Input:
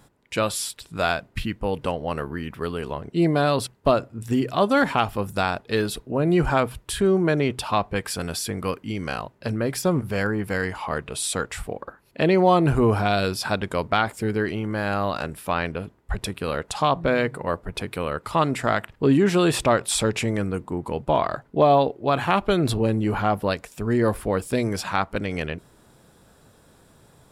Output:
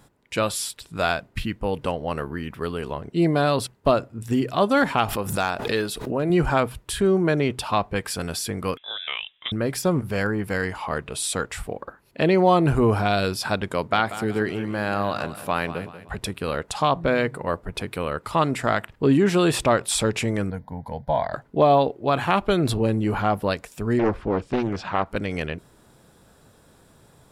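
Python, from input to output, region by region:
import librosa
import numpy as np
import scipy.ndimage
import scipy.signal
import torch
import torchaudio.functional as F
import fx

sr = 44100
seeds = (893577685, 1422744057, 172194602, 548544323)

y = fx.chain(x, sr, fx.clip_hard(threshold_db=-12.5),
    fx.low_shelf(hz=220.0, db=-7.0),
    fx.pre_swell(db_per_s=65.0), at=(5.08, 6.3))
y = fx.chain(y, sr, fx.highpass(hz=310.0, slope=6),
    fx.freq_invert(carrier_hz=3700), at=(8.77, 9.52))
y = fx.chain(y, sr, fx.highpass(hz=97.0, slope=12),
    fx.echo_feedback(ms=188, feedback_pct=41, wet_db=-13), at=(13.72, 16.18))
y = fx.chain(y, sr, fx.peak_eq(hz=4400.0, db=-4.0, octaves=1.5),
    fx.fixed_phaser(hz=1800.0, stages=8), at=(20.5, 21.33))
y = fx.chain(y, sr, fx.air_absorb(metres=170.0),
    fx.doppler_dist(depth_ms=0.68), at=(23.99, 25.06))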